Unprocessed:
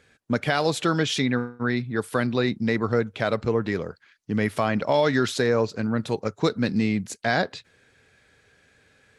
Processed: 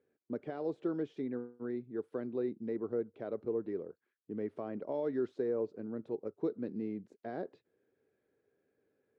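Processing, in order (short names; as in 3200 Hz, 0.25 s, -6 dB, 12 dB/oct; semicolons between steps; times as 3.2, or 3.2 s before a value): de-esser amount 70%; band-pass 370 Hz, Q 2.4; gain -7.5 dB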